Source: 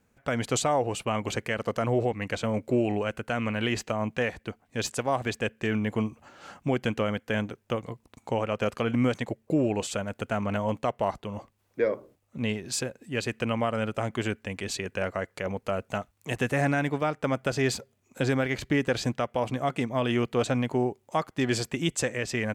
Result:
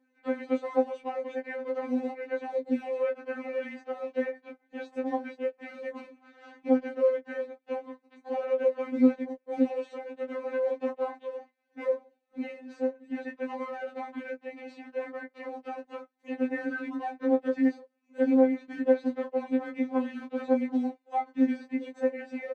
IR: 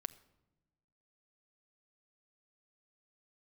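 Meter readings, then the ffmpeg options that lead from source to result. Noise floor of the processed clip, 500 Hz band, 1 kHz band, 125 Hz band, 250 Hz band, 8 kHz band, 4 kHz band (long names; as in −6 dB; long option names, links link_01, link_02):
−74 dBFS, −0.5 dB, −5.0 dB, below −30 dB, 0.0 dB, below −30 dB, below −15 dB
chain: -filter_complex "[0:a]aeval=exprs='if(lt(val(0),0),0.447*val(0),val(0))':channel_layout=same,equalizer=frequency=1200:width=4.5:gain=-7,acrossover=split=1200[link_01][link_02];[link_01]crystalizer=i=4:c=0[link_03];[link_02]acompressor=threshold=-48dB:ratio=12[link_04];[link_03][link_04]amix=inputs=2:normalize=0,acrusher=bits=6:mode=log:mix=0:aa=0.000001,highpass=300,lowpass=2400,asplit=2[link_05][link_06];[link_06]adelay=15,volume=-4dB[link_07];[link_05][link_07]amix=inputs=2:normalize=0,afftfilt=real='re*3.46*eq(mod(b,12),0)':imag='im*3.46*eq(mod(b,12),0)':win_size=2048:overlap=0.75,volume=3dB"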